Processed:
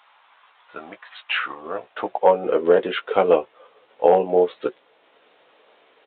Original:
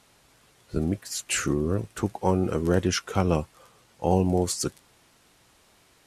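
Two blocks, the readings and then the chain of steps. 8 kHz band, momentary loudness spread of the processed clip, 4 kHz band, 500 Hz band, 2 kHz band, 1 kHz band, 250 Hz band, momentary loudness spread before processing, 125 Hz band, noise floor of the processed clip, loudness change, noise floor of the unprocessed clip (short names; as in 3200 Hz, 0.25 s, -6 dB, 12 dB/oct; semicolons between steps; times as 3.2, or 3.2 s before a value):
under -40 dB, 17 LU, +1.0 dB, +9.5 dB, +6.5 dB, +8.0 dB, -5.0 dB, 7 LU, -15.0 dB, -59 dBFS, +5.5 dB, -61 dBFS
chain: notch 370 Hz, Q 12; doubler 16 ms -7 dB; overloaded stage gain 12 dB; high-pass sweep 980 Hz -> 460 Hz, 1.37–2.43; transient shaper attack +2 dB, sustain -3 dB; downsampling 8000 Hz; gain +3.5 dB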